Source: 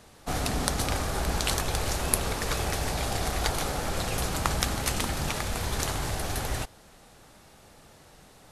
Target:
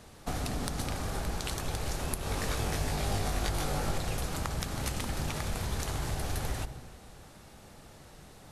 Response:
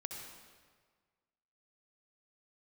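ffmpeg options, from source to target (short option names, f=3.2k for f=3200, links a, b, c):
-filter_complex "[0:a]acompressor=threshold=-32dB:ratio=6,asettb=1/sr,asplit=3[a][b][c];[a]atrim=end=2.204[d];[b]atrim=start=2.2:end=3.98,asetpts=PTS-STARTPTS,afade=t=in:d=0.004:c=qsin,afade=t=out:st=1.776:d=0.004:c=qsin,asplit=2[e][f];[f]adelay=20,volume=-2dB[g];[e][g]amix=inputs=2:normalize=0,atrim=end_sample=78498[h];[c]atrim=start=3.976[i];[d][h]acrossfade=d=0.004:c1=hsin:c2=qsin[j];[j][i]acrossfade=d=0.004:c1=qsin:c2=hsin,asplit=2[k][l];[1:a]atrim=start_sample=2205,lowshelf=f=430:g=10.5[m];[l][m]afir=irnorm=-1:irlink=0,volume=-6.5dB[n];[k][n]amix=inputs=2:normalize=0,volume=-3dB"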